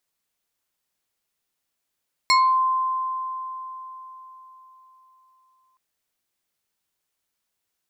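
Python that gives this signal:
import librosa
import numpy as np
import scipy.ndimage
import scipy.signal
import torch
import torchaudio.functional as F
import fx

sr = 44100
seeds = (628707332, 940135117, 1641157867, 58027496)

y = fx.fm2(sr, length_s=3.47, level_db=-13.0, carrier_hz=1040.0, ratio=3.1, index=1.6, index_s=0.34, decay_s=4.16, shape='exponential')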